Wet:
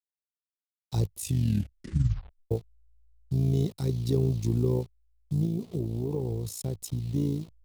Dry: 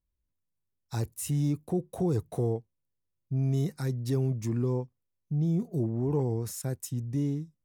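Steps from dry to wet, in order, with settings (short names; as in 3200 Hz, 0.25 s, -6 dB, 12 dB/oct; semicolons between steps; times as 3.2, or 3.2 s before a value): level-crossing sampler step -46.5 dBFS; fifteen-band EQ 100 Hz +8 dB, 400 Hz +5 dB, 1600 Hz -12 dB, 4000 Hz +7 dB; 5.45–7.15 compressor, threshold -26 dBFS, peak gain reduction 6.5 dB; AM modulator 56 Hz, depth 50%; 1.18 tape stop 1.33 s; gain +2 dB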